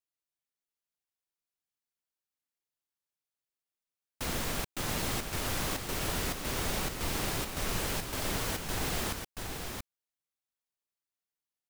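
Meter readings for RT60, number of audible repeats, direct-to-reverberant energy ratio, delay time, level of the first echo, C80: none, 1, none, 0.681 s, -5.5 dB, none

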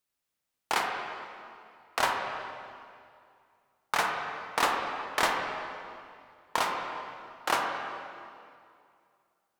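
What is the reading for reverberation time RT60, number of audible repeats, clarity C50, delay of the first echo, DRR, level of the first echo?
2.3 s, none, 2.0 dB, none, 1.0 dB, none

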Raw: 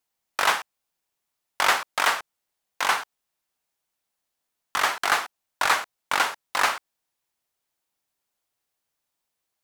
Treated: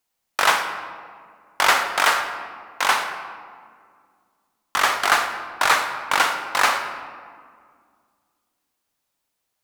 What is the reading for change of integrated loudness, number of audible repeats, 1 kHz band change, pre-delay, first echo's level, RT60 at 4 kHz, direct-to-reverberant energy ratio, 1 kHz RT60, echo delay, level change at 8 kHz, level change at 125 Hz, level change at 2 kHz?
+4.0 dB, none, +4.5 dB, 36 ms, none, 1.0 s, 6.0 dB, 1.9 s, none, +4.0 dB, n/a, +4.5 dB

